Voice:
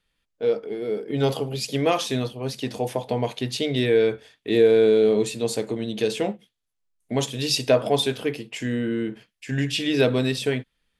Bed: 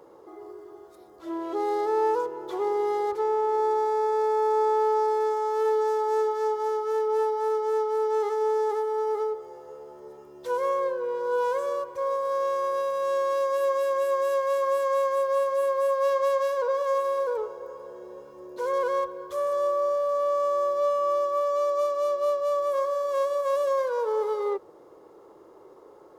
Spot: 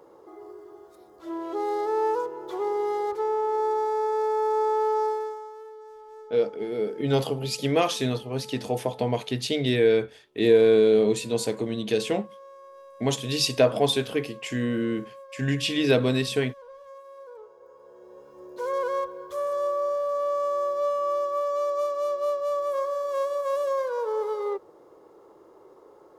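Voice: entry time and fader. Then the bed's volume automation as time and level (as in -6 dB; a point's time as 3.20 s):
5.90 s, -1.0 dB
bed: 5.07 s -1 dB
5.69 s -20.5 dB
17.05 s -20.5 dB
18.41 s -1.5 dB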